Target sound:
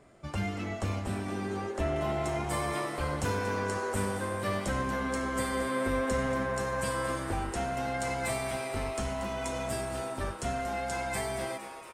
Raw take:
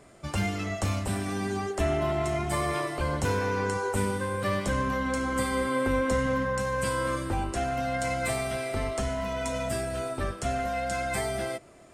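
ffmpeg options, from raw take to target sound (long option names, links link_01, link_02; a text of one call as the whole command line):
ffmpeg -i in.wav -filter_complex "[0:a]asetnsamples=nb_out_samples=441:pad=0,asendcmd='1.96 highshelf g 2',highshelf=frequency=4100:gain=-7.5,asplit=9[link_01][link_02][link_03][link_04][link_05][link_06][link_07][link_08][link_09];[link_02]adelay=233,afreqshift=140,volume=-11.5dB[link_10];[link_03]adelay=466,afreqshift=280,volume=-15.5dB[link_11];[link_04]adelay=699,afreqshift=420,volume=-19.5dB[link_12];[link_05]adelay=932,afreqshift=560,volume=-23.5dB[link_13];[link_06]adelay=1165,afreqshift=700,volume=-27.6dB[link_14];[link_07]adelay=1398,afreqshift=840,volume=-31.6dB[link_15];[link_08]adelay=1631,afreqshift=980,volume=-35.6dB[link_16];[link_09]adelay=1864,afreqshift=1120,volume=-39.6dB[link_17];[link_01][link_10][link_11][link_12][link_13][link_14][link_15][link_16][link_17]amix=inputs=9:normalize=0,volume=-4dB" out.wav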